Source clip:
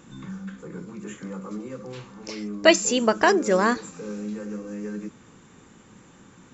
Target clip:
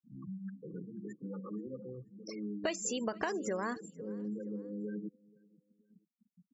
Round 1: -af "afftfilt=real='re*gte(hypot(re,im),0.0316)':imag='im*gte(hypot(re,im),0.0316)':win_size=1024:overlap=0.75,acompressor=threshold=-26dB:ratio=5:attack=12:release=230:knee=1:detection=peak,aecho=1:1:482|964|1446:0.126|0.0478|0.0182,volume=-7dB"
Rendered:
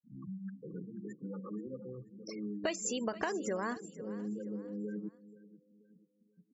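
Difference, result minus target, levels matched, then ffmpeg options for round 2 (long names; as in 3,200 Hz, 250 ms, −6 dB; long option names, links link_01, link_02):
echo-to-direct +8 dB
-af "afftfilt=real='re*gte(hypot(re,im),0.0316)':imag='im*gte(hypot(re,im),0.0316)':win_size=1024:overlap=0.75,acompressor=threshold=-26dB:ratio=5:attack=12:release=230:knee=1:detection=peak,aecho=1:1:482|964:0.0501|0.019,volume=-7dB"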